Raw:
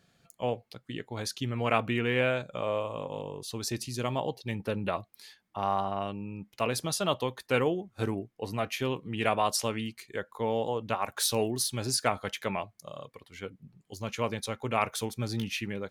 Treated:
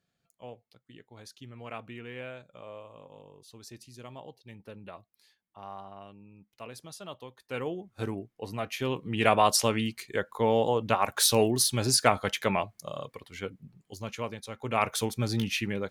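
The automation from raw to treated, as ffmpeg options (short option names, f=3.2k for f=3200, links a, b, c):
-af "volume=16.5dB,afade=t=in:st=7.39:d=0.54:silence=0.266073,afade=t=in:st=8.69:d=0.66:silence=0.421697,afade=t=out:st=13.14:d=1.31:silence=0.223872,afade=t=in:st=14.45:d=0.51:silence=0.266073"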